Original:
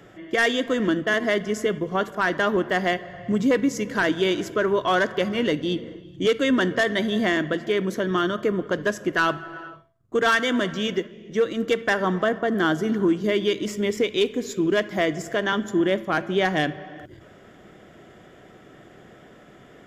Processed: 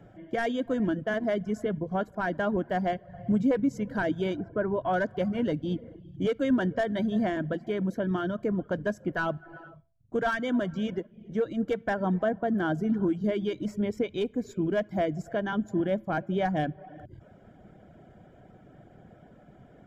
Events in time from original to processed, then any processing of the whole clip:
0:04.35–0:04.92: low-pass filter 1,500 Hz → 2,500 Hz
whole clip: reverb reduction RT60 0.5 s; tilt shelving filter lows +8.5 dB, about 1,100 Hz; comb filter 1.3 ms, depth 47%; level −9 dB

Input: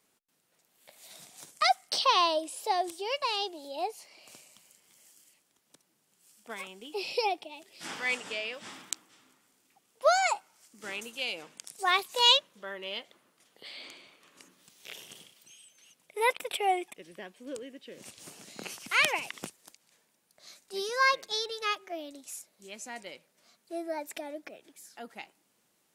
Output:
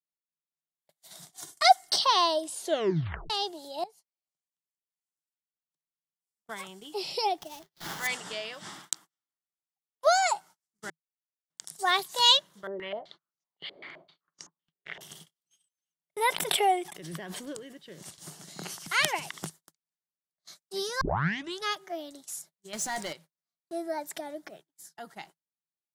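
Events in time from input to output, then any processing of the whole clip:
0:01.32–0:01.96: comb filter 2.8 ms, depth 93%
0:02.53: tape stop 0.77 s
0:03.84–0:06.67: fade in, from −18 dB
0:07.38–0:08.07: sample-rate reduction 8,900 Hz, jitter 20%
0:08.80–0:10.07: low-shelf EQ 350 Hz −8.5 dB
0:10.90–0:11.50: silence
0:12.67–0:15.01: low-pass on a step sequencer 7.8 Hz 460–6,000 Hz
0:16.25–0:17.80: background raised ahead of every attack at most 30 dB per second
0:21.01: tape start 0.64 s
0:22.73–0:23.13: leveller curve on the samples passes 3
whole clip: dynamic equaliser 1,200 Hz, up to −5 dB, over −42 dBFS, Q 3.5; noise gate −51 dBFS, range −37 dB; thirty-one-band graphic EQ 160 Hz +10 dB, 250 Hz −9 dB, 500 Hz −9 dB, 2,500 Hz −12 dB; level +3.5 dB

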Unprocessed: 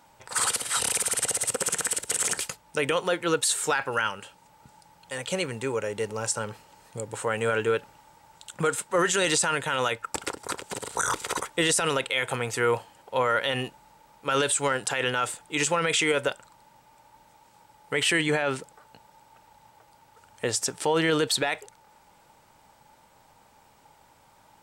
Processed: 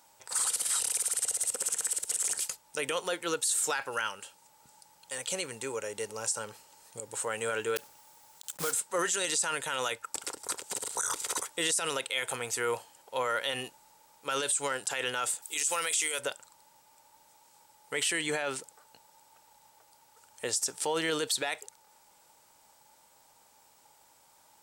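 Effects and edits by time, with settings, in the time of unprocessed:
0:07.76–0:08.74: one scale factor per block 3 bits
0:15.42–0:16.19: RIAA equalisation recording
whole clip: bass and treble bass −8 dB, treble +11 dB; brickwall limiter −12.5 dBFS; level −6.5 dB

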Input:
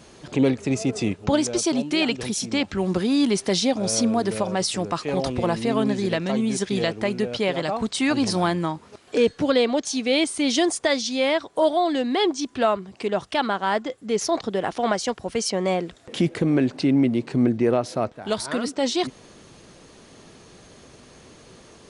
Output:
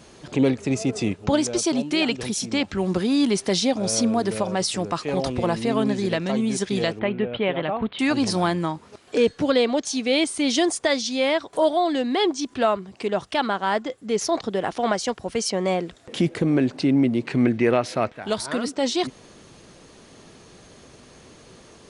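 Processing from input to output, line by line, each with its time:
0:06.99–0:07.99: Butterworth low-pass 3,400 Hz 48 dB per octave
0:11.53–0:12.54: upward compression, threshold −30 dBFS
0:17.25–0:18.25: parametric band 2,200 Hz +10 dB 1.4 octaves

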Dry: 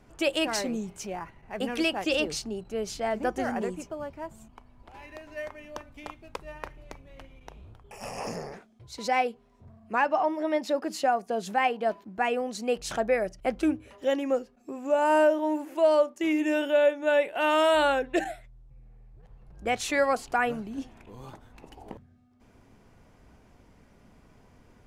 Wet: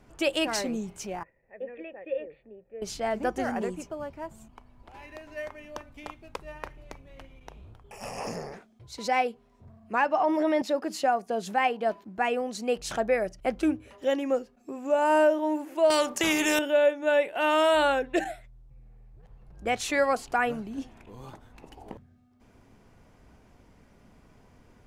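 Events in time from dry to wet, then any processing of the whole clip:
0:01.23–0:02.82: formant resonators in series e
0:10.20–0:10.62: envelope flattener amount 70%
0:15.90–0:16.59: every bin compressed towards the loudest bin 2 to 1

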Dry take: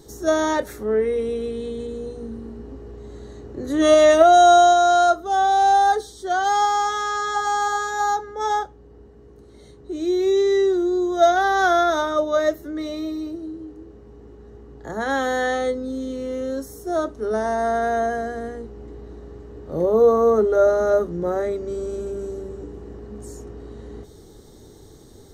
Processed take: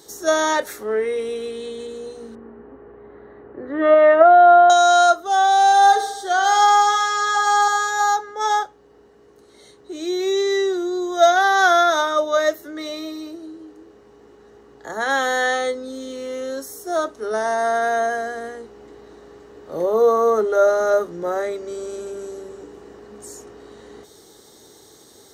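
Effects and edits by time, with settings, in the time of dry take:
0:02.35–0:04.70: low-pass filter 1,900 Hz 24 dB per octave
0:05.65–0:07.68: repeating echo 68 ms, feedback 59%, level −10.5 dB
whole clip: high-pass filter 1,000 Hz 6 dB per octave; level +6.5 dB

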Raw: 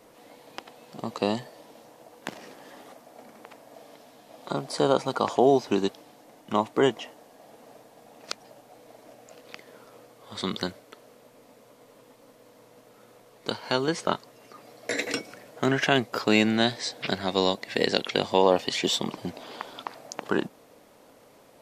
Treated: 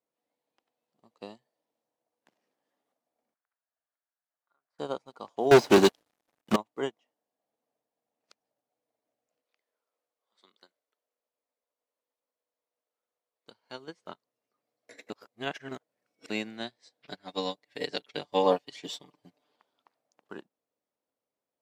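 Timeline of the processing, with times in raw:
0:03.34–0:04.79: resonant band-pass 1,500 Hz, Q 3.6
0:05.51–0:06.56: leveller curve on the samples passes 5
0:09.43–0:13.48: Bessel high-pass filter 510 Hz
0:15.10–0:16.30: reverse
0:17.08–0:19.56: comb filter 6.8 ms, depth 91%
whole clip: low-shelf EQ 75 Hz −10 dB; expander for the loud parts 2.5 to 1, over −36 dBFS

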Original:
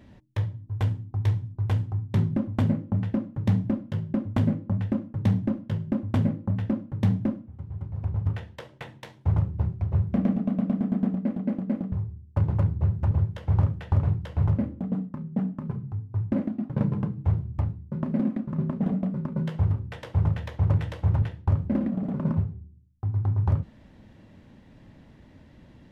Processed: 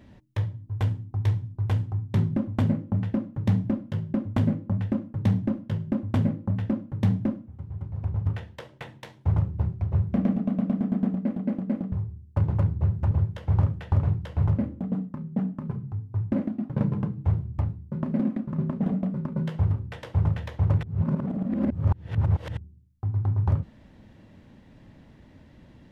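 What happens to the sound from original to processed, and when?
0:20.83–0:22.57: reverse

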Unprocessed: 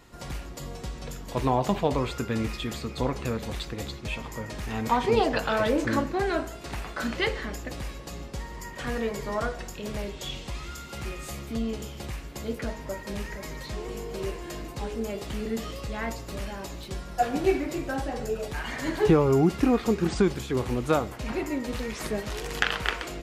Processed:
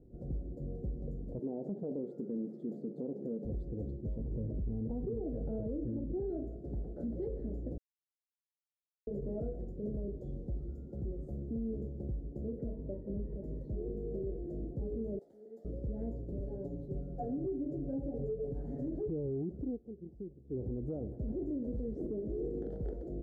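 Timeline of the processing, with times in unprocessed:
0:01.39–0:03.45: linear-phase brick-wall high-pass 150 Hz
0:04.19–0:06.20: spectral tilt −2 dB per octave
0:07.78–0:09.07: silence
0:12.72–0:13.44: low-pass filter 2,200 Hz
0:15.19–0:15.65: high-pass filter 1,000 Hz
0:16.40–0:18.88: comb filter 7.1 ms, depth 86%
0:19.53–0:20.70: duck −20.5 dB, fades 0.26 s
0:21.96–0:22.69: parametric band 330 Hz +12 dB 0.99 octaves
whole clip: inverse Chebyshev low-pass filter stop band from 1,000 Hz, stop band 40 dB; downward compressor 5 to 1, threshold −28 dBFS; brickwall limiter −28.5 dBFS; level −1.5 dB

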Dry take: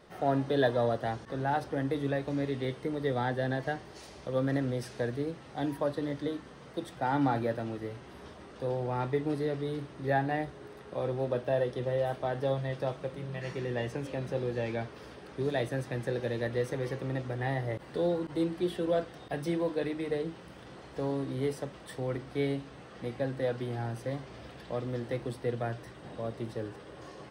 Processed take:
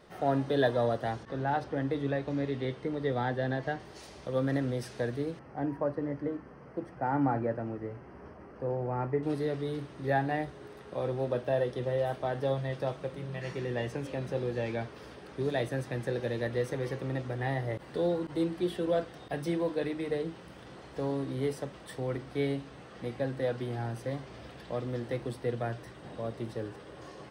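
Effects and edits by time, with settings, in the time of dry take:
0:01.23–0:03.80: high-frequency loss of the air 68 metres
0:05.39–0:09.23: moving average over 12 samples

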